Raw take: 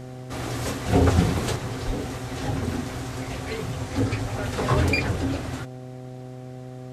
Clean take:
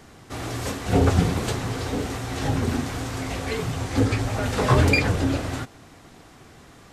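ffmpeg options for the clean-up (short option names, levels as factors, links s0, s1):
-filter_complex "[0:a]bandreject=f=127.2:t=h:w=4,bandreject=f=254.4:t=h:w=4,bandreject=f=381.6:t=h:w=4,bandreject=f=508.8:t=h:w=4,bandreject=f=636:t=h:w=4,bandreject=f=763.2:t=h:w=4,asplit=3[s0][s1][s2];[s0]afade=t=out:st=1.86:d=0.02[s3];[s1]highpass=f=140:w=0.5412,highpass=f=140:w=1.3066,afade=t=in:st=1.86:d=0.02,afade=t=out:st=1.98:d=0.02[s4];[s2]afade=t=in:st=1.98:d=0.02[s5];[s3][s4][s5]amix=inputs=3:normalize=0,asetnsamples=n=441:p=0,asendcmd='1.56 volume volume 3.5dB',volume=1"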